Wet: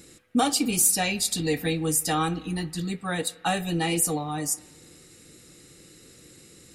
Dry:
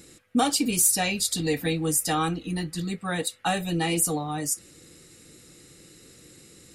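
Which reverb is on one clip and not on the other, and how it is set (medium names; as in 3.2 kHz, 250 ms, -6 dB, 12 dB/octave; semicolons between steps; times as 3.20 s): spring tank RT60 1.3 s, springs 32/52 ms, chirp 70 ms, DRR 18 dB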